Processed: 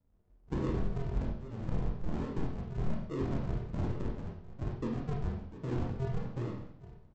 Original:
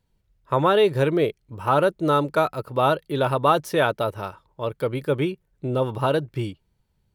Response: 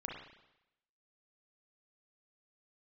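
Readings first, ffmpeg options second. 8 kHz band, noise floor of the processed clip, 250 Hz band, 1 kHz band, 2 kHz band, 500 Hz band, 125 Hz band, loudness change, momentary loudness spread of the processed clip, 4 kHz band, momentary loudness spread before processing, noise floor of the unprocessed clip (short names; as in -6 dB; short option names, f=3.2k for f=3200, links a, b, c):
under -15 dB, -64 dBFS, -9.5 dB, -24.0 dB, -22.0 dB, -20.5 dB, -6.5 dB, -14.5 dB, 6 LU, -24.0 dB, 11 LU, -71 dBFS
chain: -filter_complex "[0:a]acompressor=threshold=-33dB:ratio=2.5,aecho=1:1:440|880:0.188|0.0377,aresample=16000,acrusher=samples=40:mix=1:aa=0.000001:lfo=1:lforange=40:lforate=1.2,aresample=44100,tiltshelf=f=1.4k:g=7.5[a];[1:a]atrim=start_sample=2205,asetrate=61740,aresample=44100[b];[a][b]afir=irnorm=-1:irlink=0,volume=-5dB"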